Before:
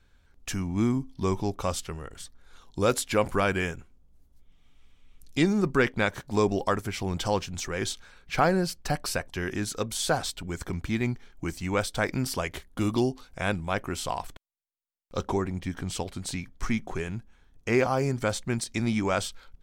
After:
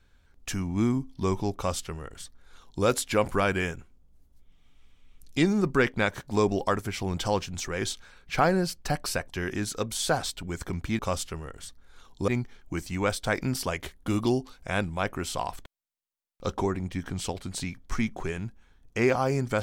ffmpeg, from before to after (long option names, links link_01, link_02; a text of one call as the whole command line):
ffmpeg -i in.wav -filter_complex "[0:a]asplit=3[link_01][link_02][link_03];[link_01]atrim=end=10.992[link_04];[link_02]atrim=start=1.558:end=2.852[link_05];[link_03]atrim=start=10.988[link_06];[link_04][link_05]acrossfade=duration=0.004:curve1=hsin:curve2=hsin[link_07];[link_07][link_06]acrossfade=duration=0.004:curve1=hsin:curve2=hsin" out.wav